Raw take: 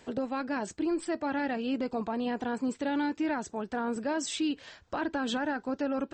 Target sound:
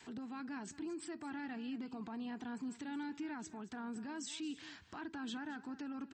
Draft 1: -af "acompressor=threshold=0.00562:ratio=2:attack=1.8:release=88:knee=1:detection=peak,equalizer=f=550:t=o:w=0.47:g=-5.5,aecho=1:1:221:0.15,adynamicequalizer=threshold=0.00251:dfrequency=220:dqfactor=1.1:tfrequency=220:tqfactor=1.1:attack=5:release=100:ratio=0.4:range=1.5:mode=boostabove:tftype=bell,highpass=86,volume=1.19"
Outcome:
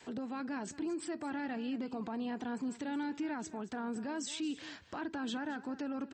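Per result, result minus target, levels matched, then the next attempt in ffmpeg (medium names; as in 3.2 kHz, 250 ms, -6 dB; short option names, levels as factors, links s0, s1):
compression: peak gain reduction -4.5 dB; 500 Hz band +3.5 dB
-af "acompressor=threshold=0.00211:ratio=2:attack=1.8:release=88:knee=1:detection=peak,equalizer=f=550:t=o:w=0.47:g=-5.5,aecho=1:1:221:0.15,adynamicequalizer=threshold=0.00251:dfrequency=220:dqfactor=1.1:tfrequency=220:tqfactor=1.1:attack=5:release=100:ratio=0.4:range=1.5:mode=boostabove:tftype=bell,highpass=86,volume=1.19"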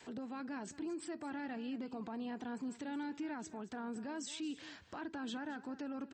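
500 Hz band +3.5 dB
-af "acompressor=threshold=0.00211:ratio=2:attack=1.8:release=88:knee=1:detection=peak,equalizer=f=550:t=o:w=0.47:g=-17,aecho=1:1:221:0.15,adynamicequalizer=threshold=0.00251:dfrequency=220:dqfactor=1.1:tfrequency=220:tqfactor=1.1:attack=5:release=100:ratio=0.4:range=1.5:mode=boostabove:tftype=bell,highpass=86,volume=1.19"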